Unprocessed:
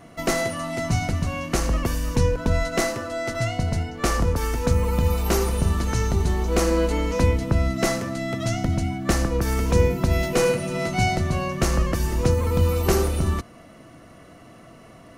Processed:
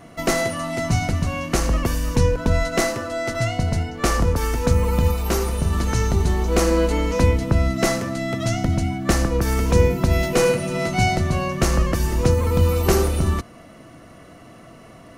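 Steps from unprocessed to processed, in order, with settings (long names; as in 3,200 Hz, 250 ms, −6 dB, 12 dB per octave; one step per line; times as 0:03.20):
0:05.11–0:05.73: tuned comb filter 75 Hz, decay 0.15 s, harmonics all, mix 50%
level +2.5 dB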